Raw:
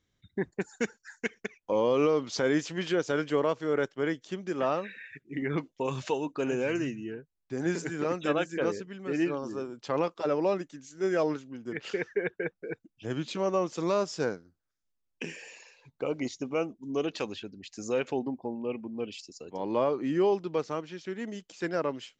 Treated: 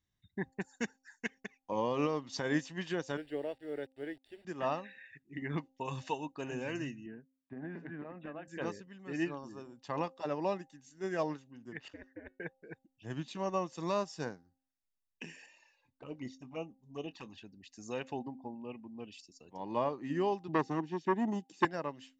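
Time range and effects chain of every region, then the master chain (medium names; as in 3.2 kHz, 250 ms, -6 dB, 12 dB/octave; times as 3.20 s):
3.17–4.45 s: word length cut 8-bit, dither none + boxcar filter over 7 samples + static phaser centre 440 Hz, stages 4
7.06–8.48 s: cabinet simulation 110–2300 Hz, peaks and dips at 240 Hz +7 dB, 630 Hz +4 dB, 940 Hz -3 dB + compression 12:1, threshold -29 dBFS
11.88–12.40 s: treble shelf 2.5 kHz -10 dB + ring modulator 98 Hz + feedback comb 370 Hz, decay 0.29 s, mix 40%
15.46–17.38 s: treble shelf 4.5 kHz -6.5 dB + touch-sensitive flanger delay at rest 3.9 ms, full sweep at -25 dBFS + doubling 23 ms -13.5 dB
20.48–21.65 s: high-pass 120 Hz 24 dB/octave + resonant low shelf 490 Hz +8.5 dB, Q 3 + transformer saturation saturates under 1.1 kHz
whole clip: comb 1.1 ms, depth 47%; de-hum 264 Hz, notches 3; upward expansion 1.5:1, over -38 dBFS; trim -2 dB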